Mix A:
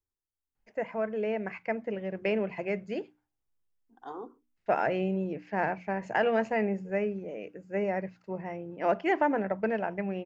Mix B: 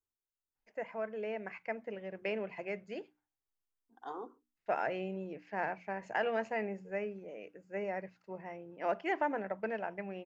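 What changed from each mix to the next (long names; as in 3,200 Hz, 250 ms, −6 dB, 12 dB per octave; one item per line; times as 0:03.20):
first voice −5.0 dB
master: add low-shelf EQ 300 Hz −9 dB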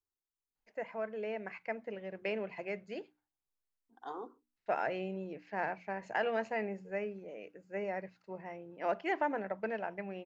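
master: add parametric band 4,100 Hz +5.5 dB 0.27 octaves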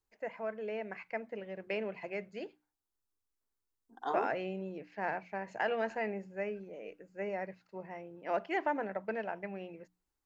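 first voice: entry −0.55 s
second voice +7.5 dB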